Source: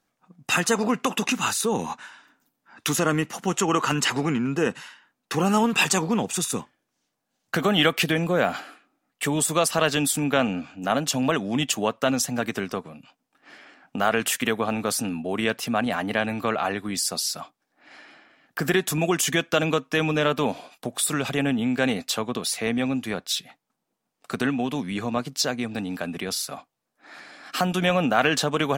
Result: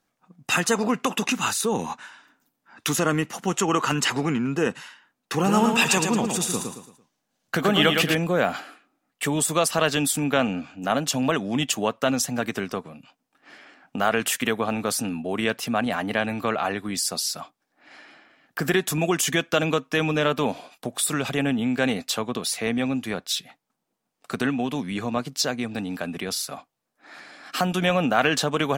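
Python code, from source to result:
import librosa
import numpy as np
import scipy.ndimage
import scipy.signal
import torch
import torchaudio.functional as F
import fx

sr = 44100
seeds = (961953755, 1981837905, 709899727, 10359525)

y = fx.echo_feedback(x, sr, ms=112, feedback_pct=36, wet_db=-5.0, at=(5.33, 8.15))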